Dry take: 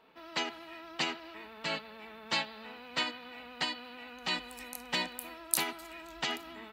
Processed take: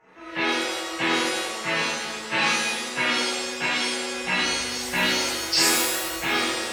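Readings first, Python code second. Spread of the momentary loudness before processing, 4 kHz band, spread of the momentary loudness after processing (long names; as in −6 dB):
14 LU, +12.0 dB, 7 LU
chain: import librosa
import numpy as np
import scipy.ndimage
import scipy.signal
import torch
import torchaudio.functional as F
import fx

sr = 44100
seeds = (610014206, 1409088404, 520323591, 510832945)

y = fx.freq_compress(x, sr, knee_hz=1200.0, ratio=1.5)
y = fx.notch(y, sr, hz=3100.0, q=26.0)
y = fx.rev_shimmer(y, sr, seeds[0], rt60_s=1.0, semitones=7, shimmer_db=-2, drr_db=-10.5)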